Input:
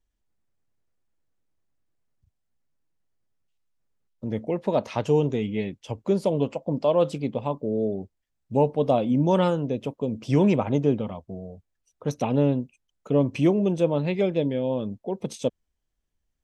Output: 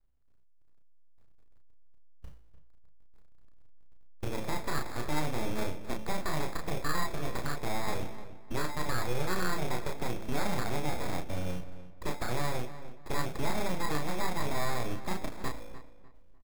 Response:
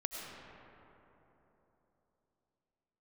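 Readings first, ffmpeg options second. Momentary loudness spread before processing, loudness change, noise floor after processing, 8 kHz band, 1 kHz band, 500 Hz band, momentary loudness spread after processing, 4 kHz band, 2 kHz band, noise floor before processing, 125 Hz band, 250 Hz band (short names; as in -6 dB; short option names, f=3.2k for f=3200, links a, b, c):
11 LU, -10.5 dB, -53 dBFS, n/a, -3.5 dB, -14.0 dB, 7 LU, +1.0 dB, +4.0 dB, -79 dBFS, -10.0 dB, -13.5 dB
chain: -filter_complex "[0:a]aemphasis=mode=reproduction:type=riaa,agate=range=-15dB:threshold=-51dB:ratio=16:detection=peak,bandreject=f=54.88:t=h:w=4,bandreject=f=109.76:t=h:w=4,bandreject=f=164.64:t=h:w=4,bandreject=f=219.52:t=h:w=4,bandreject=f=274.4:t=h:w=4,bandreject=f=329.28:t=h:w=4,bandreject=f=384.16:t=h:w=4,bandreject=f=439.04:t=h:w=4,bandreject=f=493.92:t=h:w=4,bandreject=f=548.8:t=h:w=4,asubboost=boost=5.5:cutoff=56,acrossover=split=520|1600[a][b][c];[a]acompressor=threshold=-33dB:ratio=4[d];[d][b][c]amix=inputs=3:normalize=0,alimiter=limit=-22dB:level=0:latency=1:release=97,acrusher=samples=15:mix=1:aa=0.000001,aeval=exprs='abs(val(0))':c=same,acrusher=bits=4:mode=log:mix=0:aa=0.000001,asplit=2[e][f];[f]adelay=33,volume=-4dB[g];[e][g]amix=inputs=2:normalize=0,asplit=2[h][i];[i]adelay=299,lowpass=f=2.7k:p=1,volume=-13.5dB,asplit=2[j][k];[k]adelay=299,lowpass=f=2.7k:p=1,volume=0.3,asplit=2[l][m];[m]adelay=299,lowpass=f=2.7k:p=1,volume=0.3[n];[j][l][n]amix=inputs=3:normalize=0[o];[h][o]amix=inputs=2:normalize=0"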